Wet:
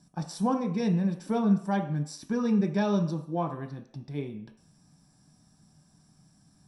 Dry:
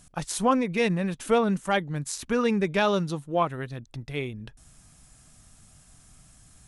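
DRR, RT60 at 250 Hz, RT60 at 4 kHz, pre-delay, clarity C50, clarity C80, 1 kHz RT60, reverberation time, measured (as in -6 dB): 3.0 dB, 0.50 s, 0.60 s, 3 ms, 10.0 dB, 13.0 dB, 0.60 s, 0.60 s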